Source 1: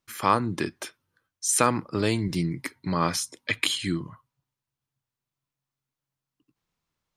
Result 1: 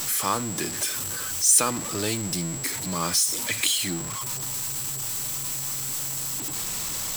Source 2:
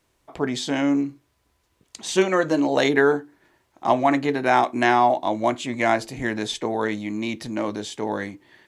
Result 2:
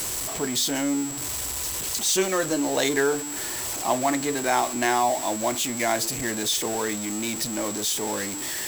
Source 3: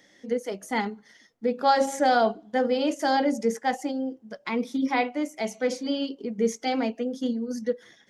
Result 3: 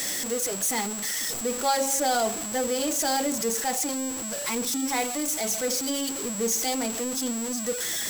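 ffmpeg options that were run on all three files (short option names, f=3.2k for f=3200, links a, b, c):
-af "aeval=exprs='val(0)+0.5*0.0596*sgn(val(0))':c=same,bass=f=250:g=-2,treble=f=4k:g=11,aeval=exprs='val(0)+0.0447*sin(2*PI*7700*n/s)':c=same,volume=-6dB"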